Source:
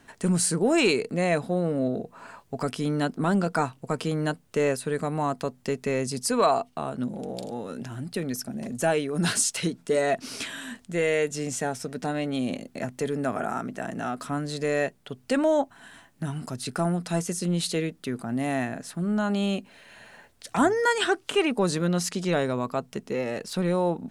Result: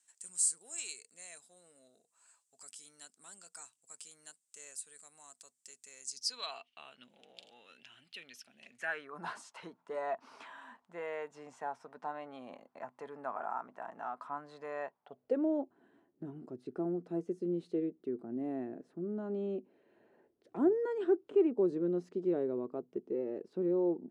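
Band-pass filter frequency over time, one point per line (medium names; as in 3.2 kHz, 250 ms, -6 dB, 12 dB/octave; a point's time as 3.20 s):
band-pass filter, Q 4.4
6.04 s 7.9 kHz
6.54 s 2.9 kHz
8.63 s 2.9 kHz
9.20 s 960 Hz
14.99 s 960 Hz
15.43 s 360 Hz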